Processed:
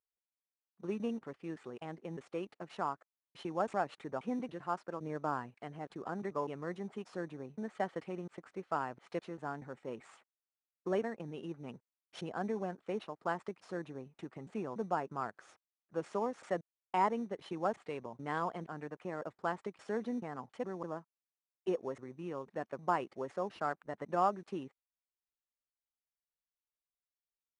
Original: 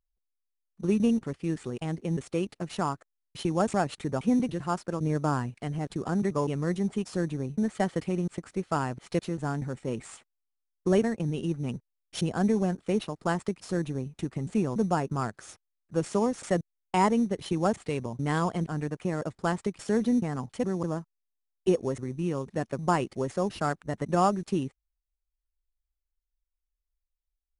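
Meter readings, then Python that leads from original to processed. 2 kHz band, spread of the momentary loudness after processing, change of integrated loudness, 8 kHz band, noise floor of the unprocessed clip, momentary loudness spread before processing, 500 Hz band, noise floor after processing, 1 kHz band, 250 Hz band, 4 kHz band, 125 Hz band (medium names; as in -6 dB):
-7.0 dB, 11 LU, -10.0 dB, under -15 dB, -84 dBFS, 9 LU, -8.5 dB, under -85 dBFS, -5.5 dB, -13.5 dB, -12.5 dB, -17.0 dB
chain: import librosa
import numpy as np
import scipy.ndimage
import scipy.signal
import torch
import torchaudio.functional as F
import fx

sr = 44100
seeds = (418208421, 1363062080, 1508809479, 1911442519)

y = fx.bandpass_q(x, sr, hz=1000.0, q=0.65)
y = y * 10.0 ** (-5.0 / 20.0)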